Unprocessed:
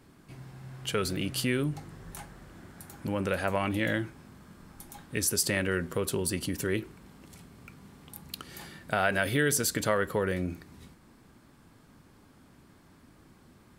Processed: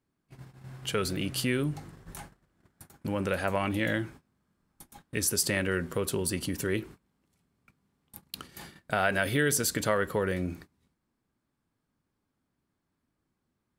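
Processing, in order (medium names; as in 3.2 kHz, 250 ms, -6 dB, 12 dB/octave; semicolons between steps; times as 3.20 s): gate -45 dBFS, range -23 dB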